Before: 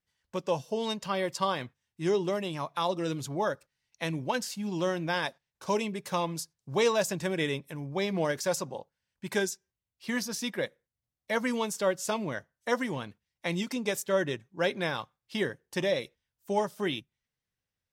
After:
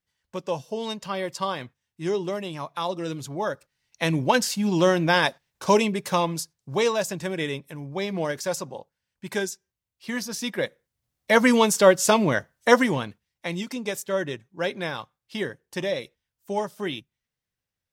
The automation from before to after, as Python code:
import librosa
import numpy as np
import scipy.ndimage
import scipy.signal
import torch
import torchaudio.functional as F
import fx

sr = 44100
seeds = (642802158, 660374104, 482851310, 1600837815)

y = fx.gain(x, sr, db=fx.line((3.38, 1.0), (4.2, 10.0), (5.73, 10.0), (7.02, 1.5), (10.18, 1.5), (11.43, 12.0), (12.73, 12.0), (13.51, 1.0)))